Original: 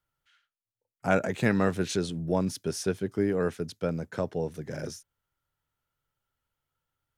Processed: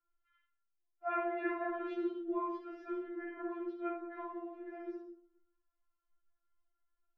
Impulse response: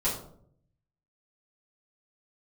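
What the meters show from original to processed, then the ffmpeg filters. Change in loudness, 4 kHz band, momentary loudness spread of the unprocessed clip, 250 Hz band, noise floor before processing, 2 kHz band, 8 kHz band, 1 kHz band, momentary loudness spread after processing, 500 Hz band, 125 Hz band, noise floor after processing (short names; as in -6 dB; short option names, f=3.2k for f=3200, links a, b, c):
-10.5 dB, under -20 dB, 11 LU, -10.0 dB, under -85 dBFS, -11.0 dB, under -40 dB, -4.0 dB, 10 LU, -11.0 dB, under -40 dB, -84 dBFS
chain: -filter_complex "[0:a]lowpass=f=2.2k:w=0.5412,lowpass=f=2.2k:w=1.3066,flanger=delay=18:depth=4.7:speed=2.9,asplit=2[a][b];[1:a]atrim=start_sample=2205,adelay=48[c];[b][c]afir=irnorm=-1:irlink=0,volume=-10dB[d];[a][d]amix=inputs=2:normalize=0,afftfilt=real='re*4*eq(mod(b,16),0)':imag='im*4*eq(mod(b,16),0)':win_size=2048:overlap=0.75,volume=-2.5dB"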